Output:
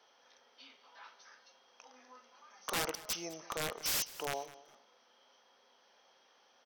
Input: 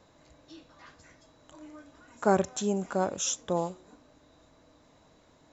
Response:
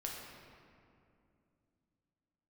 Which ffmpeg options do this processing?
-af "highpass=1000,aeval=exprs='(mod(23.7*val(0)+1,2)-1)/23.7':c=same,aecho=1:1:171|342:0.119|0.0273,asetrate=36603,aresample=44100"

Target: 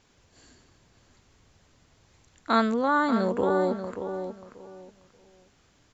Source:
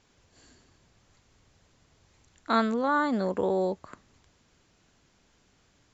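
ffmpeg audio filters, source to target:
-filter_complex "[0:a]asplit=2[s0][s1];[s1]adelay=585,lowpass=f=2900:p=1,volume=0.376,asplit=2[s2][s3];[s3]adelay=585,lowpass=f=2900:p=1,volume=0.23,asplit=2[s4][s5];[s5]adelay=585,lowpass=f=2900:p=1,volume=0.23[s6];[s0][s2][s4][s6]amix=inputs=4:normalize=0,volume=1.26"

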